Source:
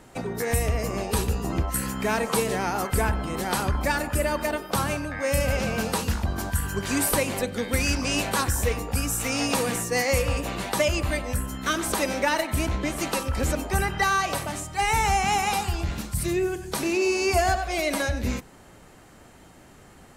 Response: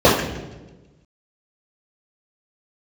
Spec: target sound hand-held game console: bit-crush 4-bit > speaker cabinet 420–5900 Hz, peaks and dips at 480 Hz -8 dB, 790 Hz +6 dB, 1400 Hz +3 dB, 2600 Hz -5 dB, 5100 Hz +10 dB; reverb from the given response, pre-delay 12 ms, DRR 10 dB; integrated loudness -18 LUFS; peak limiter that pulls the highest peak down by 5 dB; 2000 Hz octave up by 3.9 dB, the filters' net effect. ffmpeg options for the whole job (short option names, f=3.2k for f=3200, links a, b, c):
-filter_complex "[0:a]equalizer=f=2k:t=o:g=5,alimiter=limit=-13.5dB:level=0:latency=1,asplit=2[a][b];[1:a]atrim=start_sample=2205,adelay=12[c];[b][c]afir=irnorm=-1:irlink=0,volume=-38dB[d];[a][d]amix=inputs=2:normalize=0,acrusher=bits=3:mix=0:aa=0.000001,highpass=420,equalizer=f=480:t=q:w=4:g=-8,equalizer=f=790:t=q:w=4:g=6,equalizer=f=1.4k:t=q:w=4:g=3,equalizer=f=2.6k:t=q:w=4:g=-5,equalizer=f=5.1k:t=q:w=4:g=10,lowpass=f=5.9k:w=0.5412,lowpass=f=5.9k:w=1.3066,volume=5.5dB"